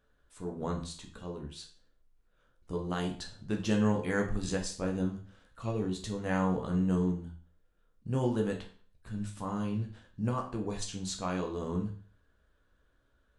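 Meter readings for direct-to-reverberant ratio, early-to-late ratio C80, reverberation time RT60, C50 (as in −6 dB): 1.5 dB, 13.5 dB, 0.45 s, 9.0 dB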